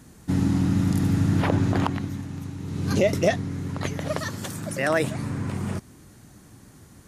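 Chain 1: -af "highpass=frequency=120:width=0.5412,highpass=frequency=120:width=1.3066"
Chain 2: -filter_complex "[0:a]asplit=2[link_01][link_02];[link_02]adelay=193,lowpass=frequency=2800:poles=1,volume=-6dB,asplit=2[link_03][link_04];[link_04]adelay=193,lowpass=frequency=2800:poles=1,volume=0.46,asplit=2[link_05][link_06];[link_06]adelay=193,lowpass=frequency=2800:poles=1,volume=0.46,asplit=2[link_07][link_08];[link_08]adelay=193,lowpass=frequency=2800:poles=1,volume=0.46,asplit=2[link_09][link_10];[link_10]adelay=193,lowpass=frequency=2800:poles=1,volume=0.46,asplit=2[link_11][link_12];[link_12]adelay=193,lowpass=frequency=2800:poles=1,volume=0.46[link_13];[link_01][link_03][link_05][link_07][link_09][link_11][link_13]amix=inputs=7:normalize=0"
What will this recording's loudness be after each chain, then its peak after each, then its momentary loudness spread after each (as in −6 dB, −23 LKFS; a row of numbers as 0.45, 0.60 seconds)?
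−26.5, −24.5 LKFS; −8.5, −6.0 dBFS; 11, 11 LU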